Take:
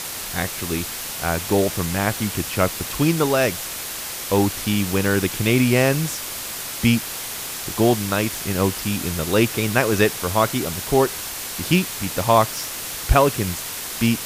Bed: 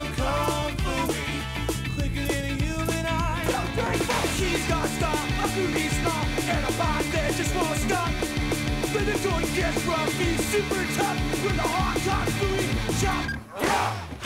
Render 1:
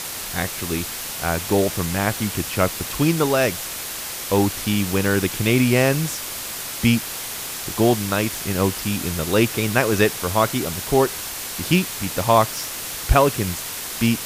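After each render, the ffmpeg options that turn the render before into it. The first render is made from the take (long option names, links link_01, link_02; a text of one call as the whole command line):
ffmpeg -i in.wav -af anull out.wav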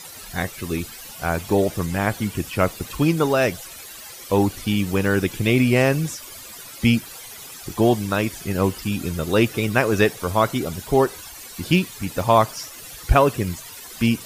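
ffmpeg -i in.wav -af "afftdn=noise_reduction=14:noise_floor=-31" out.wav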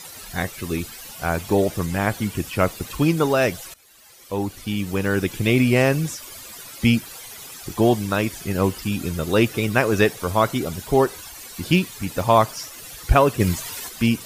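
ffmpeg -i in.wav -filter_complex "[0:a]asplit=3[link_01][link_02][link_03];[link_01]afade=type=out:start_time=13.39:duration=0.02[link_04];[link_02]acontrast=51,afade=type=in:start_time=13.39:duration=0.02,afade=type=out:start_time=13.88:duration=0.02[link_05];[link_03]afade=type=in:start_time=13.88:duration=0.02[link_06];[link_04][link_05][link_06]amix=inputs=3:normalize=0,asplit=2[link_07][link_08];[link_07]atrim=end=3.74,asetpts=PTS-STARTPTS,afade=type=out:start_time=3.736:duration=0.004:curve=hsin:silence=0.125893[link_09];[link_08]atrim=start=3.74,asetpts=PTS-STARTPTS,afade=type=in:duration=1.73:silence=0.125893[link_10];[link_09][link_10]concat=n=2:v=0:a=1" out.wav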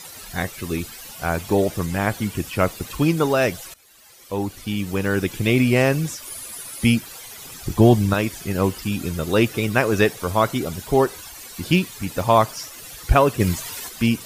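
ffmpeg -i in.wav -filter_complex "[0:a]asettb=1/sr,asplit=3[link_01][link_02][link_03];[link_01]atrim=end=6.254[link_04];[link_02]atrim=start=6.25:end=6.94,asetpts=PTS-STARTPTS,afade=type=in:duration=0.004:curve=qsin,afade=type=out:start_time=0.686:duration=0.004:curve=qsin,equalizer=frequency=10000:width_type=o:width=0.25:gain=12.5[link_05];[link_03]atrim=start=6.936[link_06];[link_04][link_05]acrossfade=duration=0.004:curve1=hsin:curve2=qsin[link_07];[link_07][link_06]acrossfade=duration=0.004:curve1=qsin:curve2=hsin,asettb=1/sr,asplit=3[link_08][link_09][link_10];[link_08]atrim=end=7.454[link_11];[link_09]atrim=start=7.45:end=8.14,asetpts=PTS-STARTPTS,afade=type=in:duration=0.004:curve=qsin,afade=type=out:start_time=0.686:duration=0.004:curve=qsin,lowshelf=frequency=200:gain=11.5[link_12];[link_10]atrim=start=8.136[link_13];[link_11][link_12]acrossfade=duration=0.004:curve1=hsin:curve2=qsin[link_14];[link_14][link_13]acrossfade=duration=0.004:curve1=qsin:curve2=hsin" out.wav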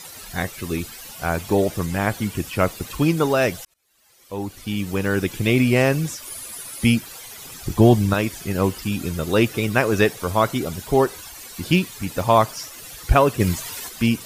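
ffmpeg -i in.wav -filter_complex "[0:a]asplit=2[link_01][link_02];[link_01]atrim=end=3.65,asetpts=PTS-STARTPTS,afade=type=out:start_time=3.646:duration=0.004:curve=hsin[link_03];[link_02]atrim=start=3.65,asetpts=PTS-STARTPTS,afade=type=in:duration=1.13[link_04];[link_03][link_04]concat=n=2:v=0:a=1" out.wav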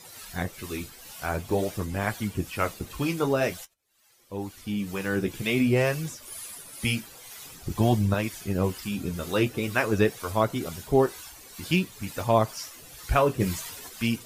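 ffmpeg -i in.wav -filter_complex "[0:a]acrossover=split=770[link_01][link_02];[link_01]aeval=exprs='val(0)*(1-0.5/2+0.5/2*cos(2*PI*2.1*n/s))':channel_layout=same[link_03];[link_02]aeval=exprs='val(0)*(1-0.5/2-0.5/2*cos(2*PI*2.1*n/s))':channel_layout=same[link_04];[link_03][link_04]amix=inputs=2:normalize=0,flanger=delay=8.2:depth=7.9:regen=-38:speed=0.49:shape=sinusoidal" out.wav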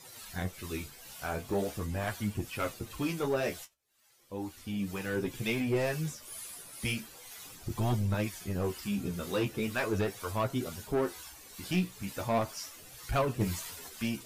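ffmpeg -i in.wav -af "asoftclip=type=tanh:threshold=-19dB,flanger=delay=7.2:depth=9.7:regen=43:speed=0.38:shape=triangular" out.wav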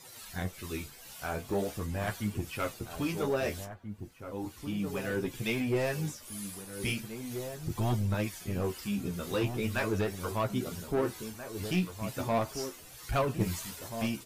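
ffmpeg -i in.wav -filter_complex "[0:a]asplit=2[link_01][link_02];[link_02]adelay=1633,volume=-8dB,highshelf=frequency=4000:gain=-36.7[link_03];[link_01][link_03]amix=inputs=2:normalize=0" out.wav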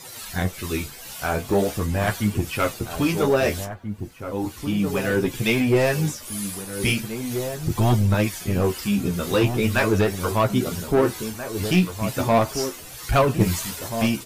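ffmpeg -i in.wav -af "volume=11dB" out.wav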